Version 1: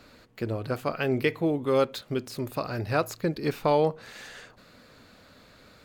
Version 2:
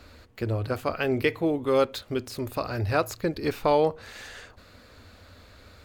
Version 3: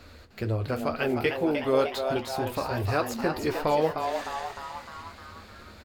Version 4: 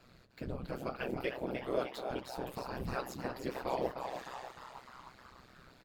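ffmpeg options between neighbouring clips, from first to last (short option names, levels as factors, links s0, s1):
-af "lowshelf=f=110:t=q:w=3:g=6.5,volume=1.19"
-filter_complex "[0:a]asplit=2[s0][s1];[s1]acompressor=threshold=0.0316:ratio=6,volume=0.75[s2];[s0][s2]amix=inputs=2:normalize=0,flanger=delay=8.9:depth=6.1:regen=-51:speed=2:shape=sinusoidal,asplit=9[s3][s4][s5][s6][s7][s8][s9][s10][s11];[s4]adelay=305,afreqshift=130,volume=0.473[s12];[s5]adelay=610,afreqshift=260,volume=0.279[s13];[s6]adelay=915,afreqshift=390,volume=0.164[s14];[s7]adelay=1220,afreqshift=520,volume=0.0977[s15];[s8]adelay=1525,afreqshift=650,volume=0.0575[s16];[s9]adelay=1830,afreqshift=780,volume=0.0339[s17];[s10]adelay=2135,afreqshift=910,volume=0.02[s18];[s11]adelay=2440,afreqshift=1040,volume=0.0117[s19];[s3][s12][s13][s14][s15][s16][s17][s18][s19]amix=inputs=9:normalize=0"
-af "afftfilt=real='hypot(re,im)*cos(2*PI*random(0))':imag='hypot(re,im)*sin(2*PI*random(1))':win_size=512:overlap=0.75,aeval=exprs='val(0)*sin(2*PI*64*n/s)':c=same,volume=0.75"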